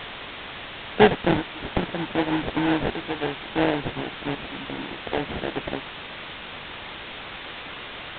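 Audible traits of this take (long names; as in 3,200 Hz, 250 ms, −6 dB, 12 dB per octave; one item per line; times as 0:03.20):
aliases and images of a low sample rate 1,200 Hz, jitter 20%
tremolo saw up 0.69 Hz, depth 80%
a quantiser's noise floor 6 bits, dither triangular
G.726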